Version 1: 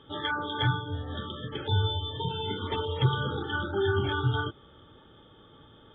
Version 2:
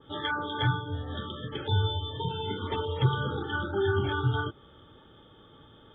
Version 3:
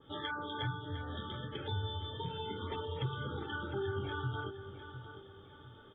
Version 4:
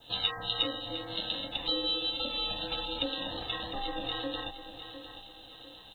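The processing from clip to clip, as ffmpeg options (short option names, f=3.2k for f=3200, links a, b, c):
-af "adynamicequalizer=threshold=0.00708:dfrequency=2300:dqfactor=0.7:tfrequency=2300:tqfactor=0.7:attack=5:release=100:ratio=0.375:range=2:mode=cutabove:tftype=highshelf"
-filter_complex "[0:a]acompressor=threshold=-33dB:ratio=2,asplit=2[a][b];[b]aecho=0:1:705|1410|2115|2820:0.282|0.107|0.0407|0.0155[c];[a][c]amix=inputs=2:normalize=0,volume=-5dB"
-af "aeval=exprs='val(0)*sin(2*PI*410*n/s)':c=same,aexciter=amount=8.9:drive=3.4:freq=2.9k,volume=3dB"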